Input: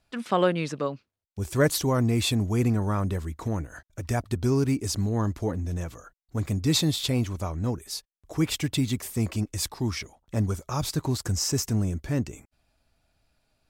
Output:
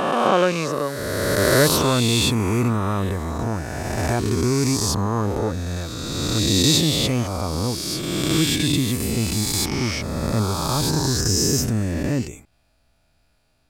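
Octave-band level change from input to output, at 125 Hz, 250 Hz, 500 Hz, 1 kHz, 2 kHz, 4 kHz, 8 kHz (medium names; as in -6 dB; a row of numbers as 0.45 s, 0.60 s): +4.0 dB, +5.5 dB, +7.0 dB, +9.0 dB, +9.5 dB, +10.0 dB, +9.5 dB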